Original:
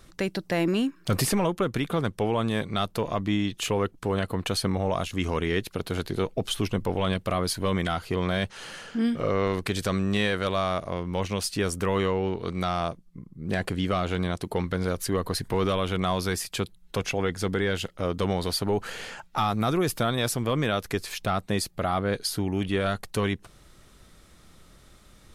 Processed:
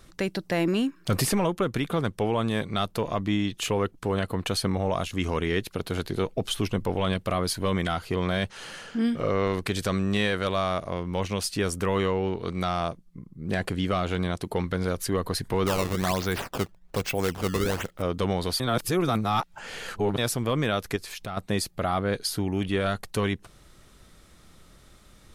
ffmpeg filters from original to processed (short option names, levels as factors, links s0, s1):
-filter_complex "[0:a]asettb=1/sr,asplit=3[s0][s1][s2];[s0]atrim=end=15.664[s3];[s1]atrim=start=15.66:end=18.02,asetpts=PTS-STARTPTS,afade=t=in:d=0.004:c=qsin,afade=t=out:st=2.356:d=0.004:c=qsin,acrusher=samples=16:mix=1:aa=0.000001:lfo=1:lforange=25.6:lforate=1.2[s4];[s2]atrim=start=18.016[s5];[s3][s4]acrossfade=d=0.004:c1=hsin:c2=qsin[s6];[s6][s5]acrossfade=d=0.004:c1=qsin:c2=hsin,asettb=1/sr,asplit=3[s7][s8][s9];[s7]atrim=end=20.964[s10];[s8]atrim=start=20.96:end=21.37,asetpts=PTS-STARTPTS,afade=t=in:d=0.004:c=qsin,afade=t=out:st=0.406:d=0.004:c=qsin,acompressor=threshold=0.0141:ratio=2:attack=3.2:release=140:knee=1:detection=peak[s11];[s9]atrim=start=21.366[s12];[s10][s11]acrossfade=d=0.004:c1=hsin:c2=qsin[s13];[s13][s12]acrossfade=d=0.004:c1=qsin:c2=hsin,asplit=3[s14][s15][s16];[s14]atrim=end=18.602[s17];[s15]atrim=start=18.598:end=20.182,asetpts=PTS-STARTPTS,areverse[s18];[s16]atrim=start=20.178[s19];[s17][s18]acrossfade=d=0.004:c1=hsin:c2=hsin[s20];[s20][s19]acrossfade=d=0.004:c1=hsin:c2=hsin"